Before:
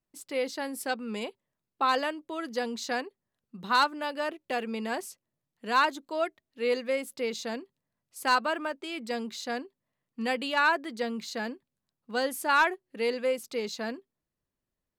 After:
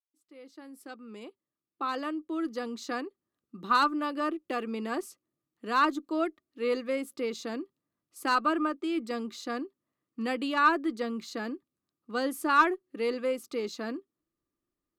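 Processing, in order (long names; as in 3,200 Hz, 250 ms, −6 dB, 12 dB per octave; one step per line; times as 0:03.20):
fade in at the beginning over 3.48 s
hollow resonant body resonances 320/1,200 Hz, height 15 dB, ringing for 40 ms
harmonic generator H 4 −35 dB, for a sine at −5.5 dBFS
level −4.5 dB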